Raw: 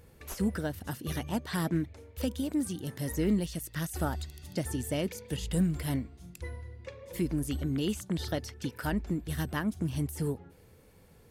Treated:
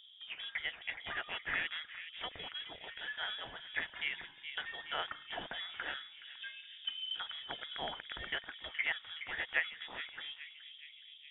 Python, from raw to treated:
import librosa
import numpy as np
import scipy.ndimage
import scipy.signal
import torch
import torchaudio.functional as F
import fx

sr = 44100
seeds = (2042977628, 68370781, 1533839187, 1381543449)

y = fx.auto_wah(x, sr, base_hz=260.0, top_hz=2000.0, q=2.3, full_db=-33.0, direction='up')
y = fx.echo_bbd(y, sr, ms=420, stages=4096, feedback_pct=68, wet_db=-9)
y = fx.freq_invert(y, sr, carrier_hz=3600)
y = F.gain(torch.from_numpy(y), 8.0).numpy()